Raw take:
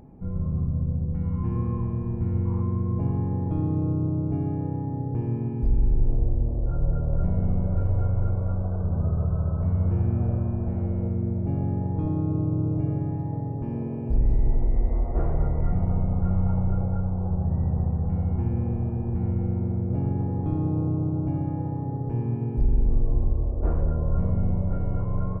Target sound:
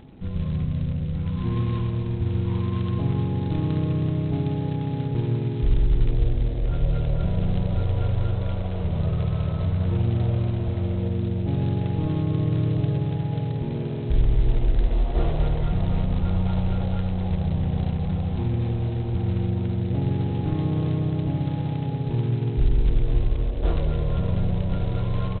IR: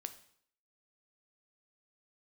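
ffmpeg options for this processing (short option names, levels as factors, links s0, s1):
-filter_complex "[0:a]asplit=2[s0][s1];[s1]adelay=1166,volume=0.141,highshelf=f=4000:g=-26.2[s2];[s0][s2]amix=inputs=2:normalize=0[s3];[1:a]atrim=start_sample=2205[s4];[s3][s4]afir=irnorm=-1:irlink=0,volume=1.88" -ar 8000 -c:a adpcm_g726 -b:a 16k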